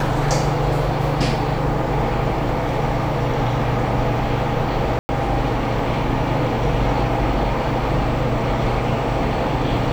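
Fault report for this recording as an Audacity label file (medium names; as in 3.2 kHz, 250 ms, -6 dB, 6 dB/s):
4.990000	5.090000	dropout 100 ms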